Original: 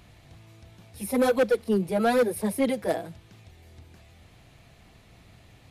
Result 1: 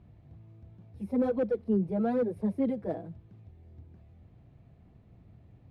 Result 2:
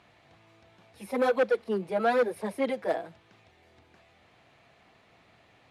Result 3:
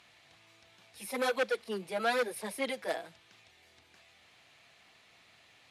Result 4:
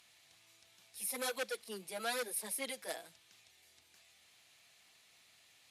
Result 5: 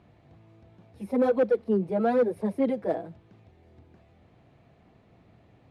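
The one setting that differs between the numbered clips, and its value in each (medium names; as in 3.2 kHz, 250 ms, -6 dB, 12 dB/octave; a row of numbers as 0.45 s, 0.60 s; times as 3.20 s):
band-pass filter, frequency: 120 Hz, 1.1 kHz, 2.9 kHz, 8 kHz, 350 Hz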